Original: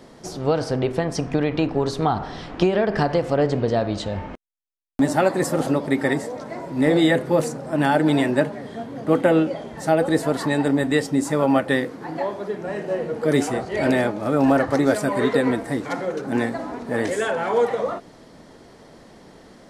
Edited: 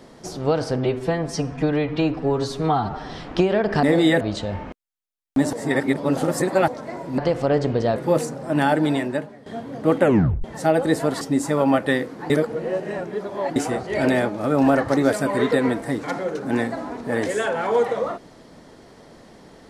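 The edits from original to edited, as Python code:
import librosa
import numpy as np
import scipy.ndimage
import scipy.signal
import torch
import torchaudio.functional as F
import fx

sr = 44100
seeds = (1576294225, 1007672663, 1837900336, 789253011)

y = fx.edit(x, sr, fx.stretch_span(start_s=0.78, length_s=1.54, factor=1.5),
    fx.swap(start_s=3.06, length_s=0.78, other_s=6.81, other_length_s=0.38),
    fx.reverse_span(start_s=5.16, length_s=1.15),
    fx.fade_out_to(start_s=7.89, length_s=0.8, floor_db=-14.0),
    fx.tape_stop(start_s=9.26, length_s=0.41),
    fx.cut(start_s=10.44, length_s=0.59),
    fx.reverse_span(start_s=12.12, length_s=1.26), tone=tone)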